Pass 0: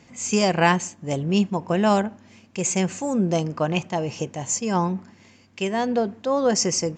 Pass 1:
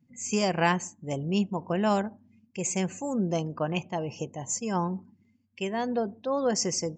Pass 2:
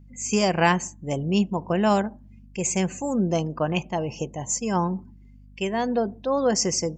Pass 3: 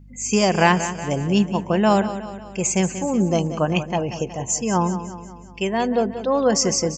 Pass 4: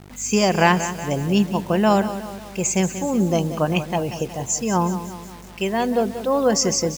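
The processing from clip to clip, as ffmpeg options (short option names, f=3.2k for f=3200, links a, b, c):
-af "afftdn=nr=26:nf=-42,volume=-6dB"
-af "aeval=exprs='val(0)+0.00251*(sin(2*PI*50*n/s)+sin(2*PI*2*50*n/s)/2+sin(2*PI*3*50*n/s)/3+sin(2*PI*4*50*n/s)/4+sin(2*PI*5*50*n/s)/5)':c=same,volume=4.5dB"
-af "aecho=1:1:184|368|552|736|920:0.251|0.131|0.0679|0.0353|0.0184,volume=3.5dB"
-af "acrusher=bits=6:mix=0:aa=0.000001"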